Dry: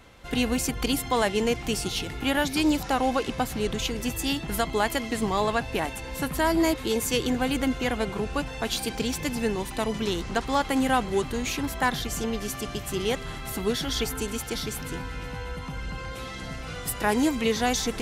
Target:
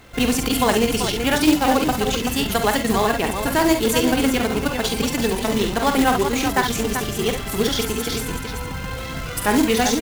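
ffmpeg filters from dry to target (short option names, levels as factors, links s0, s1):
-af "aecho=1:1:68|90|113|692:0.316|0.316|0.355|0.447,atempo=1.8,acrusher=bits=3:mode=log:mix=0:aa=0.000001,volume=1.88"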